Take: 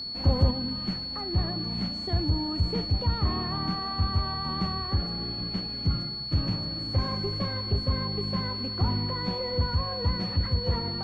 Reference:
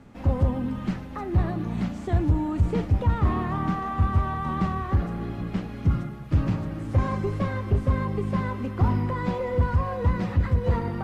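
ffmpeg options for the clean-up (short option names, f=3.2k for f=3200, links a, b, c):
-af "bandreject=f=4.4k:w=30,asetnsamples=n=441:p=0,asendcmd='0.51 volume volume 4.5dB',volume=0dB"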